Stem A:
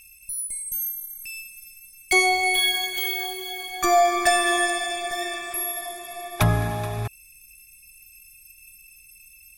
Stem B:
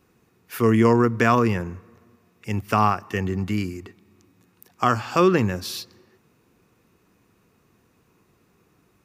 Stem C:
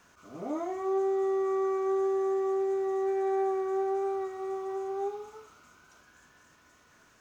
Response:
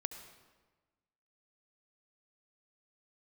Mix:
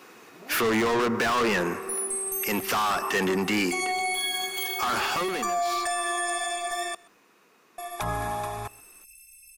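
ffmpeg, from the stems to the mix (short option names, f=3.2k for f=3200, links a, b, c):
-filter_complex "[0:a]equalizer=f=125:t=o:w=1:g=-8,equalizer=f=1k:t=o:w=1:g=10,equalizer=f=8k:t=o:w=1:g=8,adelay=1600,volume=-6dB,asplit=3[a][b][c];[a]atrim=end=6.95,asetpts=PTS-STARTPTS,afade=t=out:st=6.946:d=0.004:c=hsin[d];[b]atrim=start=6.95:end=7.78,asetpts=PTS-STARTPTS,volume=0[e];[c]atrim=start=7.78,asetpts=PTS-STARTPTS,afade=t=in:d=0.004:c=hsin[f];[d][e][f]concat=n=3:v=0:a=1,asplit=2[g][h];[h]volume=-24dB[i];[1:a]highpass=220,asplit=2[j][k];[k]highpass=f=720:p=1,volume=33dB,asoftclip=type=tanh:threshold=-5dB[l];[j][l]amix=inputs=2:normalize=0,lowpass=f=6.2k:p=1,volume=-6dB,volume=-8dB,afade=t=out:st=4.68:d=0.64:silence=0.281838[m];[2:a]volume=-10.5dB[n];[i]aecho=0:1:128:1[o];[g][m][n][o]amix=inputs=4:normalize=0,alimiter=limit=-19.5dB:level=0:latency=1:release=64"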